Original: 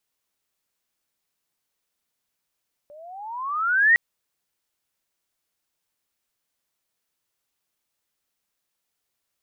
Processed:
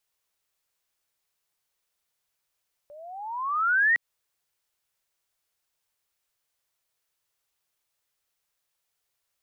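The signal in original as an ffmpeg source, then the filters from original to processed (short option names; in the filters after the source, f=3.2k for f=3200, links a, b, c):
-f lavfi -i "aevalsrc='pow(10,(-11.5+31*(t/1.06-1))/20)*sin(2*PI*574*1.06/(21*log(2)/12)*(exp(21*log(2)/12*t/1.06)-1))':d=1.06:s=44100"
-af "equalizer=f=240:t=o:w=0.79:g=-11,acompressor=threshold=-20dB:ratio=6"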